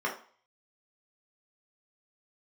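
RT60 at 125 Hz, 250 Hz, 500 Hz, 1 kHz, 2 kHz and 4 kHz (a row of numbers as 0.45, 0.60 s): 0.35, 0.35, 0.45, 0.45, 0.40, 0.45 s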